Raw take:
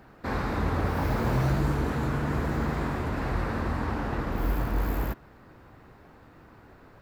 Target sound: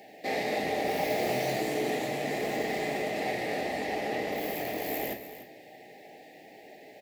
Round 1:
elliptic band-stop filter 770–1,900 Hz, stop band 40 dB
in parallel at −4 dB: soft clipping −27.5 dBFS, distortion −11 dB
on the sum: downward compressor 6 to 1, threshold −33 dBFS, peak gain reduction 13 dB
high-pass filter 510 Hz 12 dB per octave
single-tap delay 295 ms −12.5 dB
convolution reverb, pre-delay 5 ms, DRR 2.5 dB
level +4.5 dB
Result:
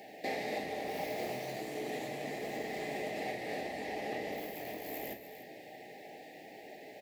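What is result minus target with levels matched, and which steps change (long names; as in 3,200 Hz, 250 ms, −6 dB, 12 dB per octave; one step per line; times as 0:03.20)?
downward compressor: peak gain reduction +13 dB; soft clipping: distortion −6 dB
change: soft clipping −38 dBFS, distortion −5 dB
remove: downward compressor 6 to 1, threshold −33 dBFS, peak gain reduction 13 dB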